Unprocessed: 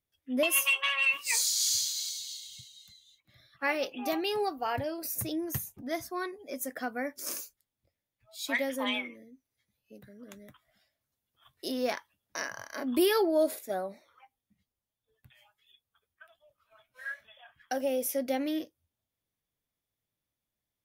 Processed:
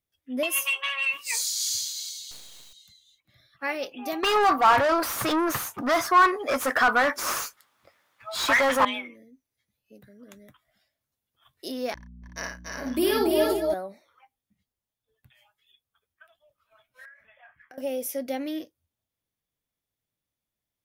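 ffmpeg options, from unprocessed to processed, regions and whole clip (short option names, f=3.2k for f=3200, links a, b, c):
-filter_complex "[0:a]asettb=1/sr,asplit=3[a][b][c];[a]atrim=end=2.314[d];[b]atrim=start=2.31:end=2.73,asetpts=PTS-STARTPTS,afade=t=in:d=0.004:c=qsin,afade=t=out:st=0.416:d=0.004:c=qsin,aeval=exprs='val(0)+0.5*0.00531*sgn(val(0))':c=same,highpass=f=830:p=1,acrusher=bits=6:dc=4:mix=0:aa=0.000001[e];[c]atrim=start=2.726[f];[d][e]acrossfade=d=0.004:c1=hsin:c2=qsin[g];[g][f]acrossfade=d=0.004:c1=qsin:c2=hsin,asettb=1/sr,asplit=3[h][i][j];[h]atrim=end=4.234[k];[i]atrim=start=4.23:end=8.85,asetpts=PTS-STARTPTS,afade=t=in:d=0.004:c=qsin,afade=t=out:st=4.616:d=0.004:c=qsin,asplit=2[l][m];[m]highpass=f=720:p=1,volume=28dB,asoftclip=type=tanh:threshold=-18.5dB[n];[l][n]amix=inputs=2:normalize=0,lowpass=f=4.2k:p=1,volume=-6dB,equalizer=f=1.2k:w=1.4:g=13[o];[j]atrim=start=8.846[p];[k][o]acrossfade=d=0.004:c1=hsin:c2=qsin[q];[q][p]acrossfade=d=0.004:c1=qsin:c2=hsin,asettb=1/sr,asplit=3[r][s][t];[r]atrim=end=11.944[u];[s]atrim=start=11.94:end=13.74,asetpts=PTS-STARTPTS,afade=t=in:d=0.004:c=qsin,afade=t=out:st=1.796:d=0.004:c=qsin,agate=range=-36dB:threshold=-39dB:ratio=16:release=100:detection=peak,aeval=exprs='val(0)+0.00501*(sin(2*PI*60*n/s)+sin(2*PI*2*60*n/s)/2+sin(2*PI*3*60*n/s)/3+sin(2*PI*4*60*n/s)/4+sin(2*PI*5*60*n/s)/5)':c=same,aecho=1:1:55|88|285|293|345|489:0.668|0.211|0.631|0.237|0.562|0.224,atrim=end_sample=79380[v];[t]atrim=start=13.736[w];[u][v]acrossfade=d=0.004:c1=hsin:c2=qsin[x];[x][w]acrossfade=d=0.004:c1=qsin:c2=hsin,asettb=1/sr,asplit=3[y][z][aa];[y]atrim=end=17.054[ab];[z]atrim=start=17.05:end=17.78,asetpts=PTS-STARTPTS,afade=t=in:d=0.004:c=qsin,afade=t=out:st=0.726:d=0.004:c=qsin,highshelf=f=2.7k:t=q:w=3:g=-8,acompressor=threshold=-46dB:ratio=20:attack=3.2:release=140:knee=1:detection=peak,asplit=2[ac][ad];[ad]adelay=27,volume=-10.5dB[ae];[ac][ae]amix=inputs=2:normalize=0,atrim=end_sample=32193[af];[aa]atrim=start=17.776[ag];[ab][af]acrossfade=d=0.004:c1=hsin:c2=qsin[ah];[ah][ag]acrossfade=d=0.004:c1=qsin:c2=hsin"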